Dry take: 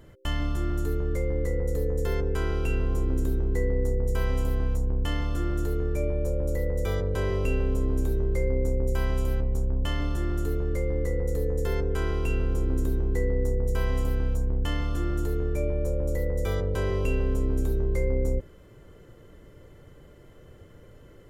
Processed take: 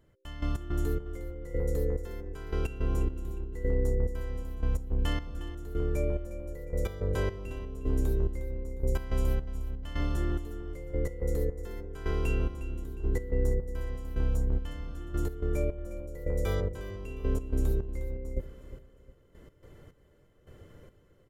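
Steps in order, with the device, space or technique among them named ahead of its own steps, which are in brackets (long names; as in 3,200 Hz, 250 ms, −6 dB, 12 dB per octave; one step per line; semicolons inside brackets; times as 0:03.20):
trance gate with a delay (gate pattern "...x.xx....xxx." 107 BPM −12 dB; repeating echo 358 ms, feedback 36%, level −13.5 dB)
level −2 dB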